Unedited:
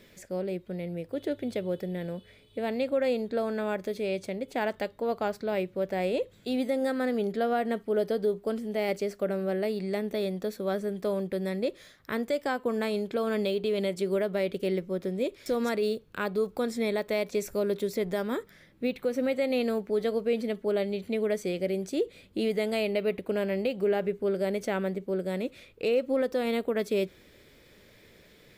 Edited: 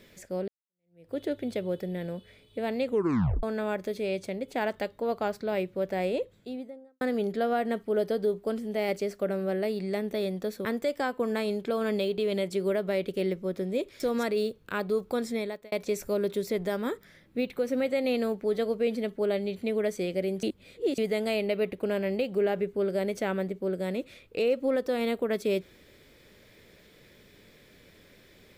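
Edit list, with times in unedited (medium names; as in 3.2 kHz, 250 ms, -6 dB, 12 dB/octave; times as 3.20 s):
0.48–1.12 s: fade in exponential
2.85 s: tape stop 0.58 s
5.96–7.01 s: studio fade out
10.65–12.11 s: delete
16.73–17.18 s: fade out
21.89–22.44 s: reverse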